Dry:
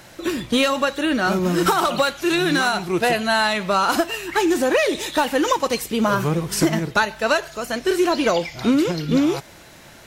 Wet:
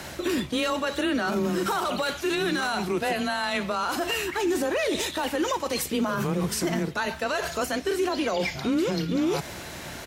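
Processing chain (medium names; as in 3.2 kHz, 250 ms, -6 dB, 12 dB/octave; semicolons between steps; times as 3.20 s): reverse; compression 12:1, threshold -26 dBFS, peak gain reduction 13.5 dB; reverse; hum 60 Hz, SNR 27 dB; frequency shift +17 Hz; peak limiter -24.5 dBFS, peak gain reduction 10.5 dB; harmony voices -4 st -16 dB; trim +6.5 dB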